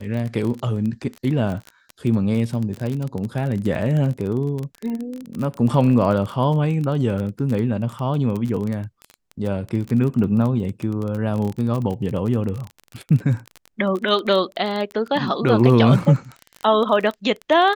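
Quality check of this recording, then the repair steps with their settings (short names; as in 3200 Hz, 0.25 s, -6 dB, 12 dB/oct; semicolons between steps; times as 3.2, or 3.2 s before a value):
crackle 22/s -24 dBFS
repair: de-click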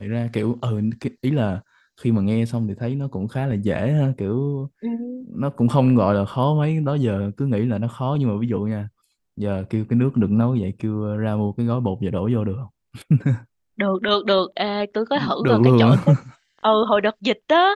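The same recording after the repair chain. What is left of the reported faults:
none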